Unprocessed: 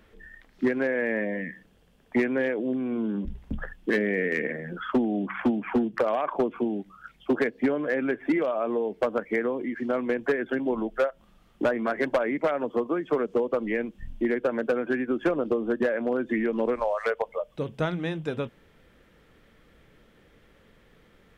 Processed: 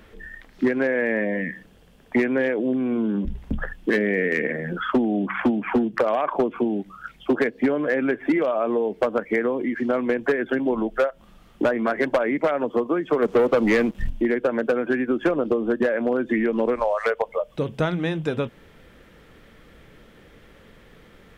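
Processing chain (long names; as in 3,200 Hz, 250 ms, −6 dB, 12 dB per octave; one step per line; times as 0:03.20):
downward compressor 1.5 to 1, threshold −33 dBFS, peak gain reduction 5 dB
0:13.22–0:14.10: leveller curve on the samples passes 2
level +8 dB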